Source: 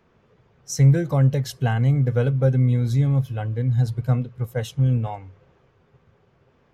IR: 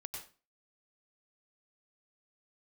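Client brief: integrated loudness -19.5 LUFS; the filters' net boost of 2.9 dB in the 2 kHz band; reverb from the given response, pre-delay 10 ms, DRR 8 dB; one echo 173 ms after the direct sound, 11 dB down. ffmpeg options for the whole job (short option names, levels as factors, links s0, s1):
-filter_complex "[0:a]equalizer=f=2000:t=o:g=4,aecho=1:1:173:0.282,asplit=2[s0][s1];[1:a]atrim=start_sample=2205,adelay=10[s2];[s1][s2]afir=irnorm=-1:irlink=0,volume=0.531[s3];[s0][s3]amix=inputs=2:normalize=0,volume=1.12"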